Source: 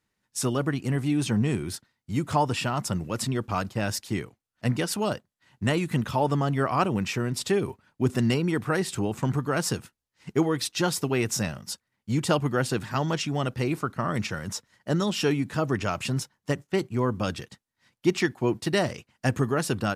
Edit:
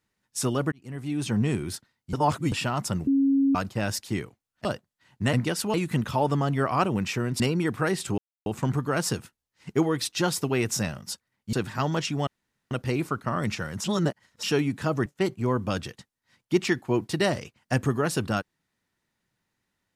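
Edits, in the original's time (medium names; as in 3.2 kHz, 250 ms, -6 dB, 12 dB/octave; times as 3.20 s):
0.72–1.42 s: fade in linear
2.13–2.52 s: reverse
3.07–3.55 s: bleep 274 Hz -18 dBFS
4.65–5.06 s: move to 5.74 s
7.40–8.28 s: delete
9.06 s: insert silence 0.28 s
12.13–12.69 s: delete
13.43 s: insert room tone 0.44 s
14.56–15.15 s: reverse
15.78–16.59 s: delete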